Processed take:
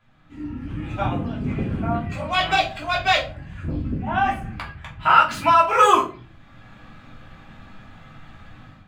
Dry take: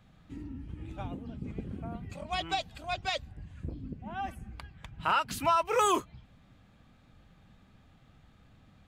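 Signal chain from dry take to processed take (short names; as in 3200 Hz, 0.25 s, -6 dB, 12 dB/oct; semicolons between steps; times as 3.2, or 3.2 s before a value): median filter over 3 samples; bell 1600 Hz +9.5 dB 2.7 oct; AGC gain up to 14.5 dB; reverb RT60 0.40 s, pre-delay 3 ms, DRR -5 dB; gain -10 dB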